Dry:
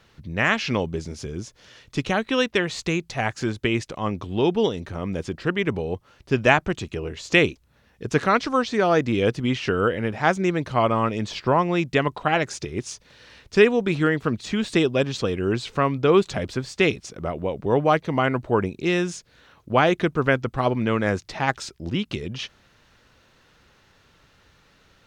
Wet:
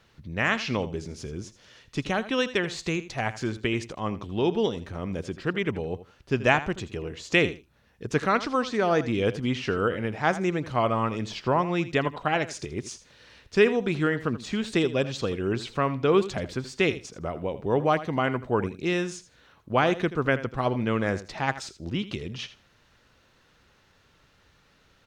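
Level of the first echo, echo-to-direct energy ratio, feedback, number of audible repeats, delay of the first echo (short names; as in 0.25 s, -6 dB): -14.5 dB, -14.5 dB, 16%, 2, 81 ms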